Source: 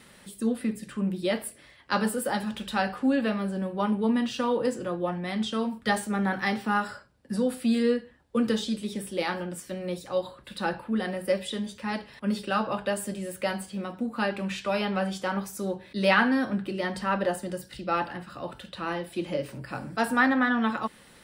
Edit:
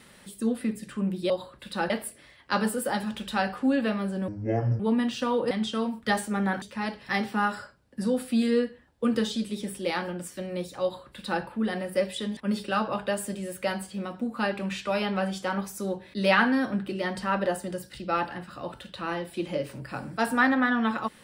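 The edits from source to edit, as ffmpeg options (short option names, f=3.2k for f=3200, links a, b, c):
-filter_complex "[0:a]asplit=9[a][b][c][d][e][f][g][h][i];[a]atrim=end=1.302[j];[b]atrim=start=10.148:end=10.752[k];[c]atrim=start=1.298:end=3.684[l];[d]atrim=start=3.68:end=3.97,asetpts=PTS-STARTPTS,asetrate=24696,aresample=44100,atrim=end_sample=22837,asetpts=PTS-STARTPTS[m];[e]atrim=start=3.966:end=4.682[n];[f]atrim=start=5.298:end=6.412[o];[g]atrim=start=11.688:end=12.162[p];[h]atrim=start=6.408:end=11.692[q];[i]atrim=start=12.158[r];[j][k]acrossfade=d=0.004:c1=hsin:c2=hsin[s];[s][l]acrossfade=d=0.004:c1=hsin:c2=hsin[t];[t][m]acrossfade=d=0.004:c1=hsin:c2=hsin[u];[u][n]acrossfade=d=0.004:c1=hsin:c2=hsin[v];[v][o]acrossfade=d=0.004:c1=hsin:c2=hsin[w];[w][p]acrossfade=d=0.004:c1=hsin:c2=hsin[x];[x][q]acrossfade=d=0.004:c1=hsin:c2=hsin[y];[y][r]acrossfade=d=0.004:c1=hsin:c2=hsin"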